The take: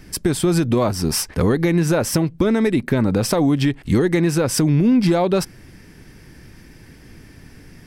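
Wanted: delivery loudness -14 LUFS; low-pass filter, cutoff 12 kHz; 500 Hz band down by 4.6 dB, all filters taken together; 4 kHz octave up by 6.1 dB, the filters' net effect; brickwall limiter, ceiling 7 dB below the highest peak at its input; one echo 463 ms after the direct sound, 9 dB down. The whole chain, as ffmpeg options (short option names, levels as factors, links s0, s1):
-af "lowpass=12000,equalizer=f=500:t=o:g=-6.5,equalizer=f=4000:t=o:g=8.5,alimiter=limit=0.266:level=0:latency=1,aecho=1:1:463:0.355,volume=2.11"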